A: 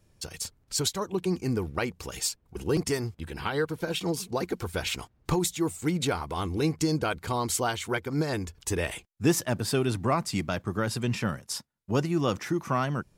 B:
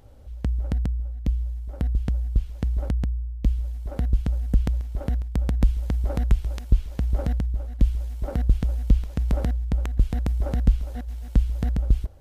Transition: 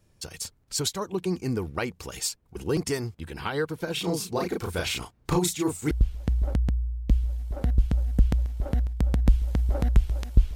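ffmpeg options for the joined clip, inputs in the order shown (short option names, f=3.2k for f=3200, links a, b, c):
-filter_complex "[0:a]asplit=3[a][b][c];[a]afade=t=out:st=3.96:d=0.02[d];[b]asplit=2[e][f];[f]adelay=34,volume=-2dB[g];[e][g]amix=inputs=2:normalize=0,afade=t=in:st=3.96:d=0.02,afade=t=out:st=5.91:d=0.02[h];[c]afade=t=in:st=5.91:d=0.02[i];[d][h][i]amix=inputs=3:normalize=0,apad=whole_dur=10.55,atrim=end=10.55,atrim=end=5.912[j];[1:a]atrim=start=2.258:end=6.9[k];[j][k]acrossfade=d=0.004:c1=hsin:c2=hsin"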